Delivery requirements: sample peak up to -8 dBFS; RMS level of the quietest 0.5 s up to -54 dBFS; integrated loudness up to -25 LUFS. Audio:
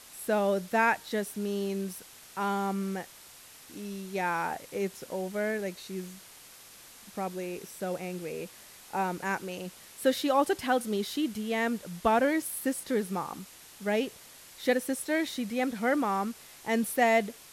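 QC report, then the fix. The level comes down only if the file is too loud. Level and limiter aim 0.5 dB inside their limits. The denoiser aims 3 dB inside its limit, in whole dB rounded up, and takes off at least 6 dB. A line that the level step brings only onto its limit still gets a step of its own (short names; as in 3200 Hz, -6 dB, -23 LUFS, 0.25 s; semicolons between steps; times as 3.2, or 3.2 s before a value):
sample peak -12.0 dBFS: OK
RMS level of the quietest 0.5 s -52 dBFS: fail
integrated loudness -30.5 LUFS: OK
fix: denoiser 6 dB, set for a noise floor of -52 dBFS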